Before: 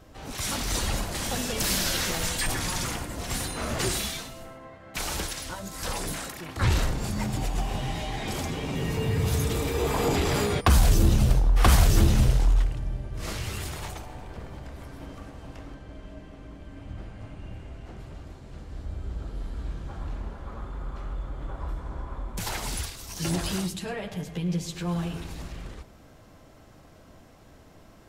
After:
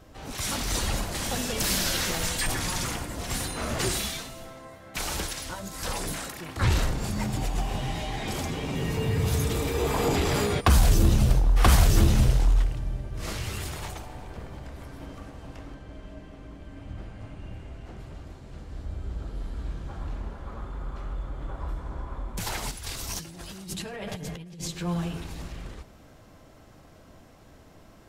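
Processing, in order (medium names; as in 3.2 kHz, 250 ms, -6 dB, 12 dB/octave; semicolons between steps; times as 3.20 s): 22.71–24.68 s: compressor with a negative ratio -38 dBFS, ratio -1; on a send: thinning echo 385 ms, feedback 34%, level -23 dB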